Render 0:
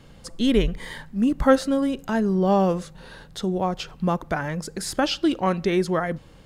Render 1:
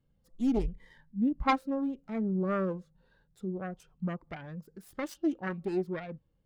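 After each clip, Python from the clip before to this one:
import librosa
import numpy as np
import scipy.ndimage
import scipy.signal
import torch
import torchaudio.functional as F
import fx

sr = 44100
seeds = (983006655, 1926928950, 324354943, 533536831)

y = fx.self_delay(x, sr, depth_ms=0.73)
y = fx.spectral_expand(y, sr, expansion=1.5)
y = y * 10.0 ** (-8.5 / 20.0)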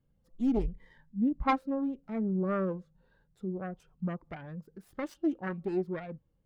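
y = fx.high_shelf(x, sr, hz=3300.0, db=-9.5)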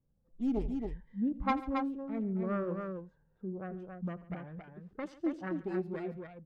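y = fx.env_lowpass(x, sr, base_hz=1100.0, full_db=-29.0)
y = fx.echo_multitap(y, sr, ms=(84, 141, 274), db=(-18.5, -19.5, -5.0))
y = y * 10.0 ** (-4.0 / 20.0)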